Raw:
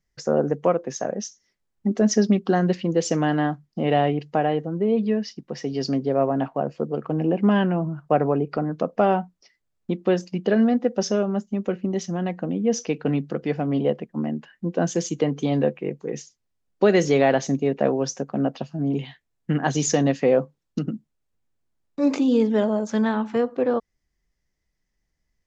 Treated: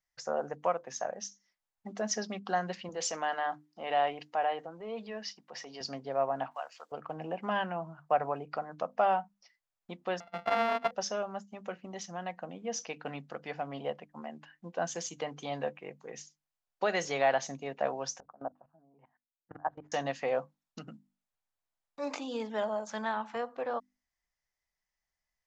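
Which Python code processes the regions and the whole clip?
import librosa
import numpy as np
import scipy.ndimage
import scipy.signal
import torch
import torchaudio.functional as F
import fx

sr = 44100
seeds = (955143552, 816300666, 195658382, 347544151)

y = fx.chain(x, sr, fx.highpass(hz=230.0, slope=12),
    fx.transient(attack_db=-4, sustain_db=4), at=(2.89, 5.81))
y = fx.chain(y, sr, fx.highpass(hz=1100.0, slope=12),
    fx.high_shelf(hz=2100.0, db=11.0), at=(6.51, 6.92))
y = fx.chain(y, sr, fx.sample_sort(block=64),
    fx.air_absorb(metres=340.0), at=(10.2, 10.91))
y = fx.chain(y, sr, fx.lowpass(hz=1300.0, slope=24),
    fx.peak_eq(hz=82.0, db=-15.0, octaves=1.2),
    fx.level_steps(step_db=23), at=(18.2, 19.92))
y = fx.low_shelf_res(y, sr, hz=520.0, db=-11.5, q=1.5)
y = fx.hum_notches(y, sr, base_hz=50, count=6)
y = F.gain(torch.from_numpy(y), -6.5).numpy()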